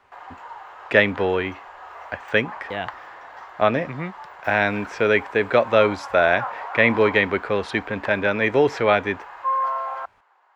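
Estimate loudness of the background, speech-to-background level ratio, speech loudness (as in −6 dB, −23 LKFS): −33.5 LKFS, 12.5 dB, −21.0 LKFS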